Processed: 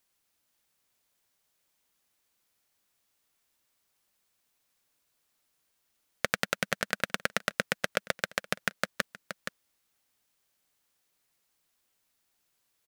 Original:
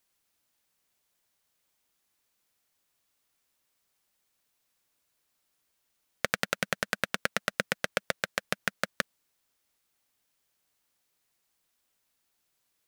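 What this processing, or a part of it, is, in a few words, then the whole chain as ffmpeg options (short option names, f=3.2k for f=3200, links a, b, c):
ducked delay: -filter_complex "[0:a]asplit=3[a][b][c];[b]adelay=472,volume=-7.5dB[d];[c]apad=whole_len=588520[e];[d][e]sidechaincompress=threshold=-40dB:ratio=8:attack=7.8:release=249[f];[a][f]amix=inputs=2:normalize=0"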